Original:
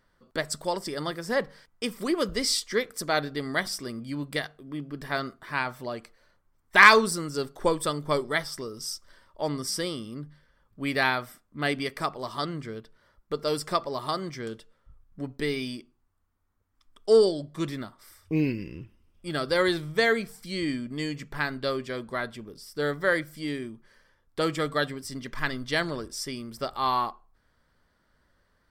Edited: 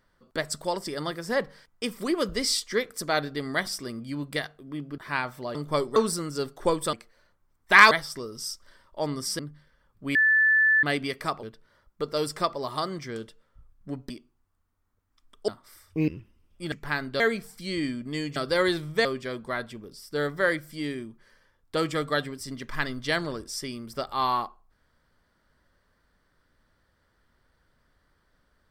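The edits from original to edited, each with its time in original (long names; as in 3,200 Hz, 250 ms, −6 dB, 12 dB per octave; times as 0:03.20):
0:04.98–0:05.40: remove
0:05.97–0:06.95: swap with 0:07.92–0:08.33
0:09.81–0:10.15: remove
0:10.91–0:11.59: beep over 1,750 Hz −17 dBFS
0:12.19–0:12.74: remove
0:15.41–0:15.73: remove
0:17.11–0:17.83: remove
0:18.43–0:18.72: remove
0:19.36–0:20.05: swap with 0:21.21–0:21.69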